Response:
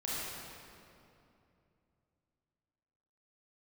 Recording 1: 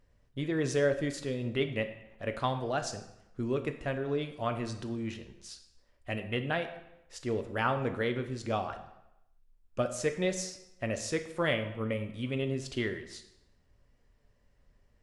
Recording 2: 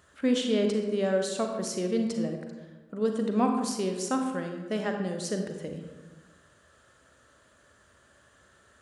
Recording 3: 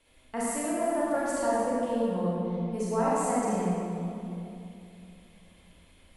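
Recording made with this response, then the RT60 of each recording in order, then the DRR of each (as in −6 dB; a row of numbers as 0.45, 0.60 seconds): 3; 0.85, 1.3, 2.7 seconds; 6.5, 3.5, −8.0 decibels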